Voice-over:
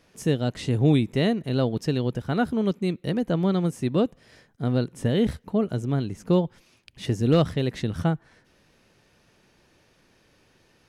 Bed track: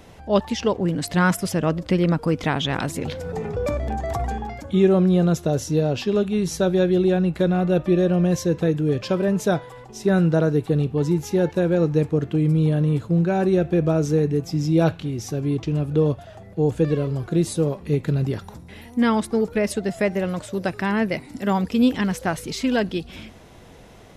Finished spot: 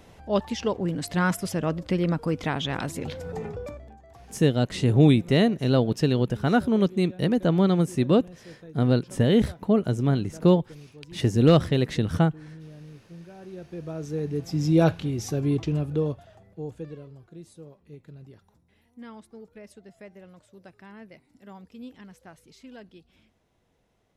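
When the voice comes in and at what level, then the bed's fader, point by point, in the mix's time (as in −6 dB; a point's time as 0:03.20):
4.15 s, +2.5 dB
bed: 0:03.46 −5 dB
0:04.00 −25 dB
0:13.36 −25 dB
0:14.68 −1 dB
0:15.60 −1 dB
0:17.33 −24 dB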